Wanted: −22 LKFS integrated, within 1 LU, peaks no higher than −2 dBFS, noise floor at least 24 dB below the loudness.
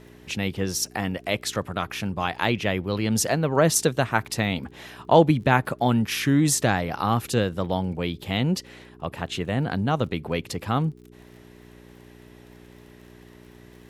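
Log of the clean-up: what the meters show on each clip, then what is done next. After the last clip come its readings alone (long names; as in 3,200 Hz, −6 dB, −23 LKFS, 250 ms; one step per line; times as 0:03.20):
crackle rate 30 per second; mains hum 60 Hz; hum harmonics up to 420 Hz; level of the hum −50 dBFS; integrated loudness −24.5 LKFS; sample peak −3.0 dBFS; target loudness −22.0 LKFS
→ click removal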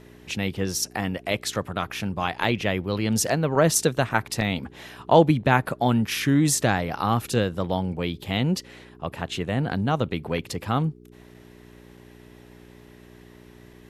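crackle rate 0.072 per second; mains hum 60 Hz; hum harmonics up to 420 Hz; level of the hum −50 dBFS
→ hum removal 60 Hz, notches 7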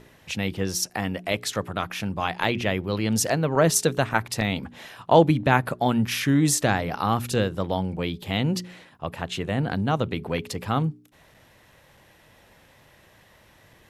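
mains hum none found; integrated loudness −24.5 LKFS; sample peak −2.5 dBFS; target loudness −22.0 LKFS
→ level +2.5 dB
brickwall limiter −2 dBFS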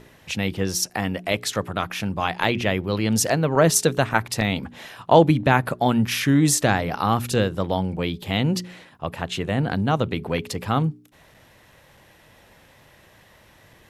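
integrated loudness −22.0 LKFS; sample peak −2.0 dBFS; background noise floor −54 dBFS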